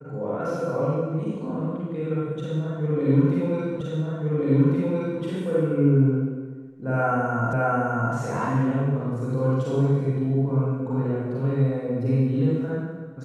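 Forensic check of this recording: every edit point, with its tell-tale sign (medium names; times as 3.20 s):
3.81 s: repeat of the last 1.42 s
7.53 s: repeat of the last 0.61 s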